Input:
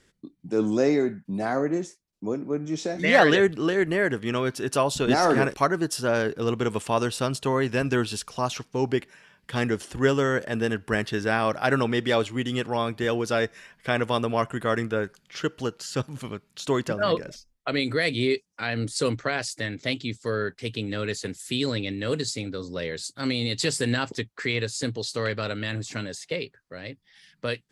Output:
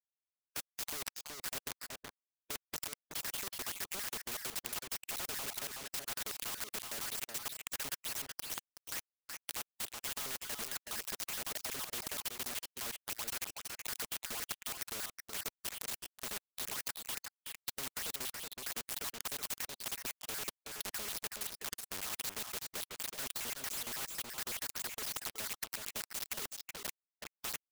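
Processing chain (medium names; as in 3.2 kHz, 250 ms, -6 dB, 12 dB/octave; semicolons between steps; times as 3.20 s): random holes in the spectrogram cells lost 81%; reverb removal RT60 1.7 s; high-pass 430 Hz 12 dB/octave; comb 4.8 ms, depth 84%; peak limiter -24 dBFS, peak gain reduction 11.5 dB; level rider gain up to 3.5 dB; saturation -27 dBFS, distortion -13 dB; bit crusher 6-bit; delay 374 ms -14.5 dB; spectrum-flattening compressor 4:1; trim +10 dB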